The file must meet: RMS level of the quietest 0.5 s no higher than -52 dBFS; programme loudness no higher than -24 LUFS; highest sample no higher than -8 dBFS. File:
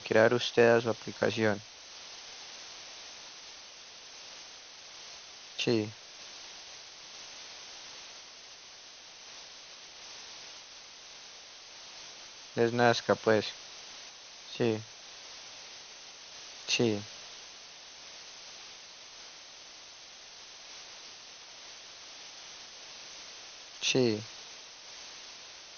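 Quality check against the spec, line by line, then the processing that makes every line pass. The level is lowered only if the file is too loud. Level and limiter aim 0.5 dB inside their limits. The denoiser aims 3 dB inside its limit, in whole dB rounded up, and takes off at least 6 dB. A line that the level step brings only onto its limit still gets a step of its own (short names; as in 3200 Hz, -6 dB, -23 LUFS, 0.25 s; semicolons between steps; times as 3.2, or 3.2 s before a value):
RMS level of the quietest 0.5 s -51 dBFS: fail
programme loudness -33.5 LUFS: OK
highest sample -10.0 dBFS: OK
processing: denoiser 6 dB, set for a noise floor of -51 dBFS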